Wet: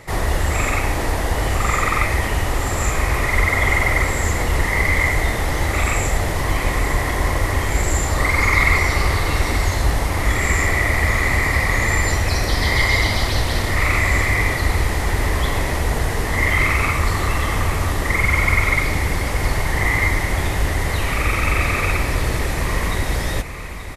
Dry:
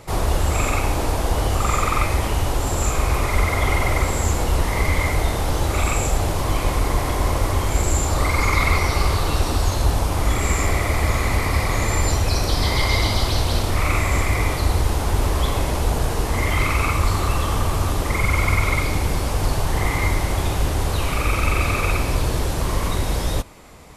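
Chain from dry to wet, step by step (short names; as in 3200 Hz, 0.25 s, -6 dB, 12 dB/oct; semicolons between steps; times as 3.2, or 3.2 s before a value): bell 1900 Hz +13 dB 0.3 oct; on a send: feedback echo 0.88 s, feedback 60%, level -13 dB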